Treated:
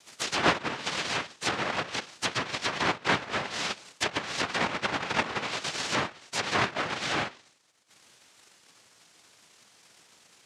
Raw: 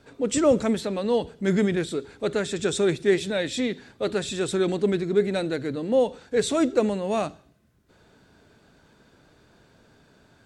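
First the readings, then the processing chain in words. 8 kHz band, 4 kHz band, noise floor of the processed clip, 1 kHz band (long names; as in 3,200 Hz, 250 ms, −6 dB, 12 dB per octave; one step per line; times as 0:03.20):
−1.5 dB, +4.0 dB, −61 dBFS, +4.5 dB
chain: samples in bit-reversed order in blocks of 256 samples
cochlear-implant simulation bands 1
treble cut that deepens with the level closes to 1,900 Hz, closed at −26 dBFS
level +5 dB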